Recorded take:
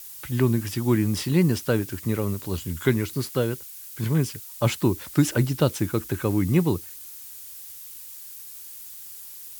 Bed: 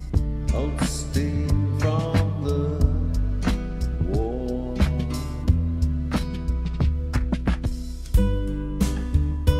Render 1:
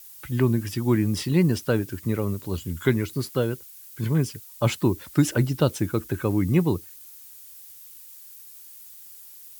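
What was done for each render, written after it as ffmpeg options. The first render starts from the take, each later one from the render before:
-af "afftdn=nr=6:nf=-41"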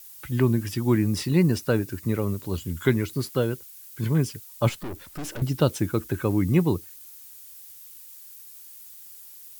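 -filter_complex "[0:a]asettb=1/sr,asplit=3[s0][s1][s2];[s0]atrim=end=0.984[s3];[s1]atrim=start=0.98:end=2.07,asetpts=PTS-STARTPTS,afade=t=in:d=0.004:c=qsin,afade=t=out:st=1.086:d=0.004:c=qsin,bandreject=f=3200:w=10[s4];[s2]atrim=start=2.066[s5];[s3][s4]acrossfade=d=0.004:c1=hsin:c2=qsin[s6];[s6][s5]acrossfade=d=0.004:c1=qsin:c2=hsin,asettb=1/sr,asplit=3[s7][s8][s9];[s7]atrim=end=4.694[s10];[s8]atrim=start=4.69:end=5.42,asetpts=PTS-STARTPTS,afade=t=in:d=0.004:c=qsin,afade=t=out:st=0.726:d=0.004:c=qsin,aeval=exprs='(tanh(39.8*val(0)+0.6)-tanh(0.6))/39.8':c=same[s11];[s9]atrim=start=5.416[s12];[s10][s11]acrossfade=d=0.004:c1=hsin:c2=qsin[s13];[s13][s12]acrossfade=d=0.004:c1=qsin:c2=hsin"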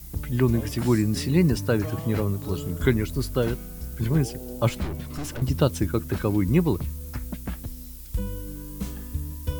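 -filter_complex "[1:a]volume=0.316[s0];[0:a][s0]amix=inputs=2:normalize=0"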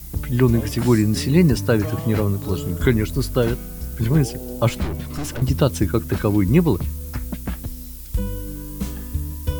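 -af "volume=1.78,alimiter=limit=0.708:level=0:latency=1"

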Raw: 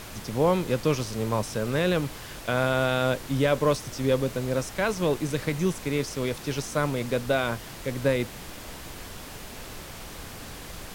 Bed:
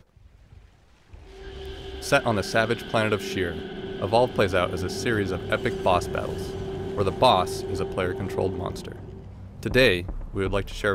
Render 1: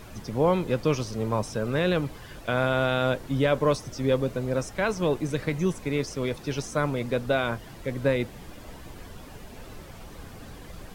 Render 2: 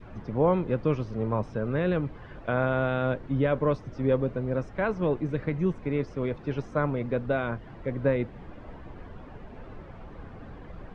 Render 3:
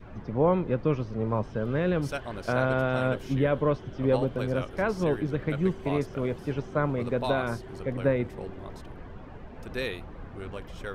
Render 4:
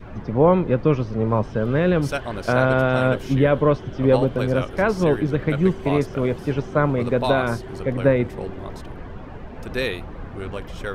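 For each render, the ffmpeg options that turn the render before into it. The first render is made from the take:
-af "afftdn=nr=10:nf=-41"
-af "lowpass=1700,adynamicequalizer=threshold=0.0141:dfrequency=800:dqfactor=0.76:tfrequency=800:tqfactor=0.76:attack=5:release=100:ratio=0.375:range=2.5:mode=cutabove:tftype=bell"
-filter_complex "[1:a]volume=0.2[s0];[0:a][s0]amix=inputs=2:normalize=0"
-af "volume=2.37"

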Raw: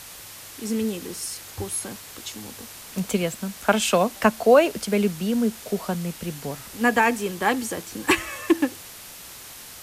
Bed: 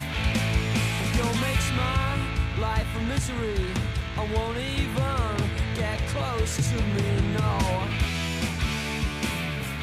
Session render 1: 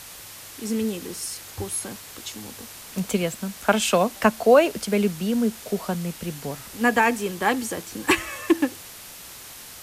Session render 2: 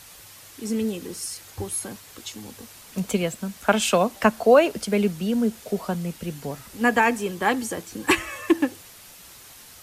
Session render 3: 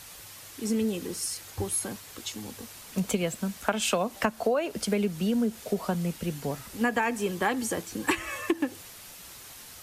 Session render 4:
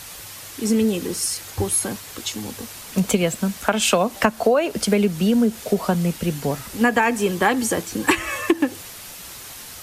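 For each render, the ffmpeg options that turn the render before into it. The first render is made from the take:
-af anull
-af "afftdn=nr=6:nf=-42"
-af "acompressor=threshold=0.0794:ratio=12"
-af "volume=2.66,alimiter=limit=0.708:level=0:latency=1"

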